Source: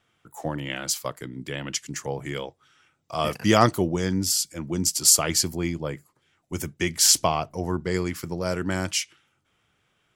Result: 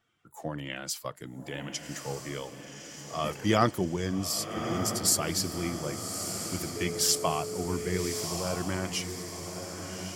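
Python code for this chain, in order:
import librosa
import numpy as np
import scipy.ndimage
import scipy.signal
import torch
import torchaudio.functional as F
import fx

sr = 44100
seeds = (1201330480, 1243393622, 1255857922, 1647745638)

p1 = fx.spec_quant(x, sr, step_db=15)
p2 = p1 + fx.echo_diffused(p1, sr, ms=1197, feedback_pct=52, wet_db=-7, dry=0)
p3 = fx.dynamic_eq(p2, sr, hz=6600.0, q=2.4, threshold_db=-39.0, ratio=4.0, max_db=-4)
p4 = fx.dmg_tone(p3, sr, hz=430.0, level_db=-29.0, at=(6.75, 8.23), fade=0.02)
y = F.gain(torch.from_numpy(p4), -5.5).numpy()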